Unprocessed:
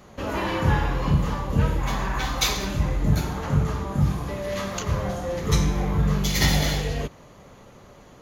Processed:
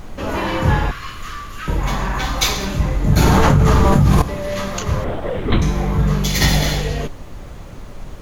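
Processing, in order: 0.91–1.68 steep high-pass 1100 Hz 96 dB/oct; 5.04–5.62 LPC vocoder at 8 kHz whisper; added noise brown -36 dBFS; 3.16–4.22 fast leveller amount 100%; gain +5 dB

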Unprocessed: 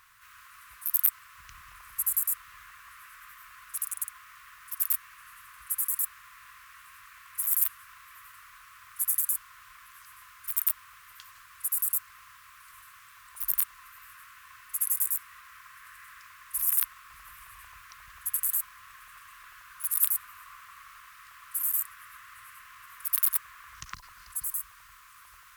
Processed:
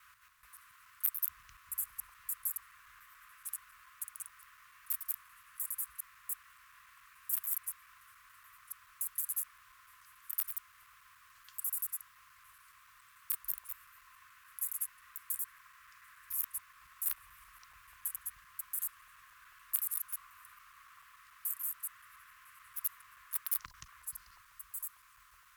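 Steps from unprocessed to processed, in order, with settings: slices in reverse order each 0.143 s, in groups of 3; gain -8.5 dB

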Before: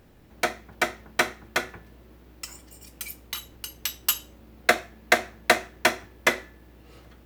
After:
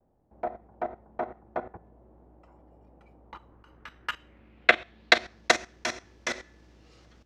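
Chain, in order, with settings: low-pass sweep 780 Hz -> 5900 Hz, 3.17–5.51; expander -47 dBFS; level quantiser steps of 14 dB

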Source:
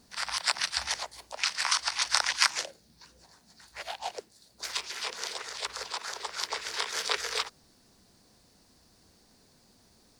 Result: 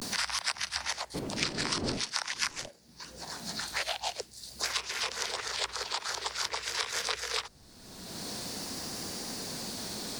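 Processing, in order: 1.15–2.67 wind noise 320 Hz -32 dBFS; vibrato 0.47 Hz 76 cents; three-band squash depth 100%; gain -2 dB

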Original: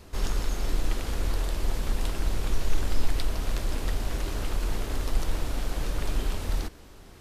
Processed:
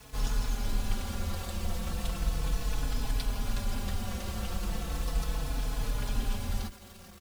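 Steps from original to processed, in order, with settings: thirty-one-band EQ 200 Hz +5 dB, 400 Hz -9 dB, 2000 Hz -4 dB; bit-crush 8-bit; notch comb 310 Hz; endless flanger 4.2 ms -0.36 Hz; gain +2 dB

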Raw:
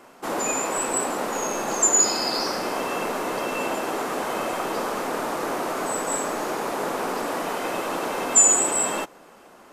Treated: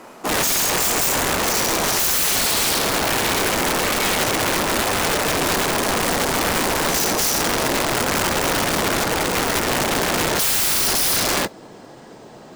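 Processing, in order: speed glide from 94% -> 61%; wrapped overs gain 22 dB; modulation noise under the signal 25 dB; gain +8 dB

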